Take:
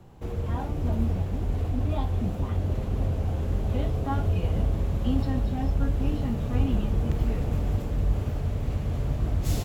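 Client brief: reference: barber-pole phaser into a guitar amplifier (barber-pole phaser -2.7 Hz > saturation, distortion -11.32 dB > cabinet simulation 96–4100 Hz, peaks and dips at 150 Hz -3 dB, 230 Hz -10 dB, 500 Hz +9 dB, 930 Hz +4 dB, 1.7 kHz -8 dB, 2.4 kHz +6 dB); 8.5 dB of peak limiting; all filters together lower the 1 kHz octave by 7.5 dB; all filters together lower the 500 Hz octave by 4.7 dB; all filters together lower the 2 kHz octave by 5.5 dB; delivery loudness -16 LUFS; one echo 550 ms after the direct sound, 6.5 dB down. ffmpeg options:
-filter_complex "[0:a]equalizer=f=500:t=o:g=-9,equalizer=f=1000:t=o:g=-8,equalizer=f=2000:t=o:g=-5.5,alimiter=limit=0.0891:level=0:latency=1,aecho=1:1:550:0.473,asplit=2[s0][s1];[s1]afreqshift=-2.7[s2];[s0][s2]amix=inputs=2:normalize=1,asoftclip=threshold=0.0316,highpass=96,equalizer=f=150:t=q:w=4:g=-3,equalizer=f=230:t=q:w=4:g=-10,equalizer=f=500:t=q:w=4:g=9,equalizer=f=930:t=q:w=4:g=4,equalizer=f=1700:t=q:w=4:g=-8,equalizer=f=2400:t=q:w=4:g=6,lowpass=f=4100:w=0.5412,lowpass=f=4100:w=1.3066,volume=20"

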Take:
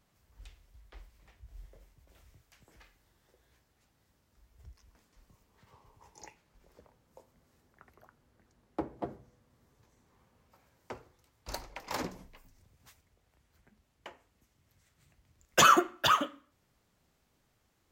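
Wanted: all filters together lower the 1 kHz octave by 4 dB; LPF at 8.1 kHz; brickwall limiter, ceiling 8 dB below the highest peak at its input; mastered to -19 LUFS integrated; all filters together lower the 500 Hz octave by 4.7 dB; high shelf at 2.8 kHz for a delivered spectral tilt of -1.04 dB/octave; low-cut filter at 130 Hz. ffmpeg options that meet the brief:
-af "highpass=130,lowpass=8100,equalizer=f=500:t=o:g=-5,equalizer=f=1000:t=o:g=-6.5,highshelf=f=2800:g=8,volume=4.47,alimiter=limit=0.841:level=0:latency=1"

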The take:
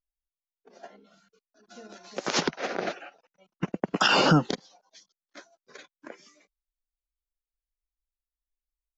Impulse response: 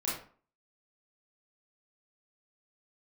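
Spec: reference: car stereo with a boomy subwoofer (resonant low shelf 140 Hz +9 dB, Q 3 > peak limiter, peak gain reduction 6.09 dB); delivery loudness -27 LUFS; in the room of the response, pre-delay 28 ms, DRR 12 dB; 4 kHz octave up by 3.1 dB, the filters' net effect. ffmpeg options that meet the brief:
-filter_complex "[0:a]equalizer=f=4000:t=o:g=4.5,asplit=2[s0][s1];[1:a]atrim=start_sample=2205,adelay=28[s2];[s1][s2]afir=irnorm=-1:irlink=0,volume=0.141[s3];[s0][s3]amix=inputs=2:normalize=0,lowshelf=f=140:t=q:w=3:g=9,volume=1.12,alimiter=limit=0.224:level=0:latency=1"

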